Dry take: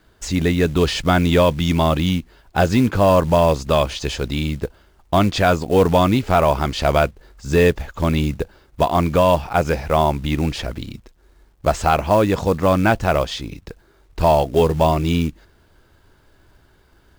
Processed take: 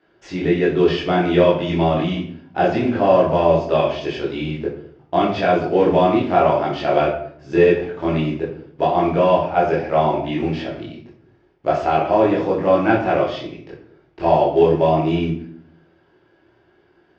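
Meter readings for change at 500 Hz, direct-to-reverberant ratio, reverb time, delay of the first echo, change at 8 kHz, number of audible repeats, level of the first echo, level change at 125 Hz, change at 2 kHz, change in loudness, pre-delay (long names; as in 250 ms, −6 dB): +1.5 dB, −5.5 dB, 0.60 s, no echo audible, below −15 dB, no echo audible, no echo audible, −5.0 dB, −2.0 dB, 0.0 dB, 18 ms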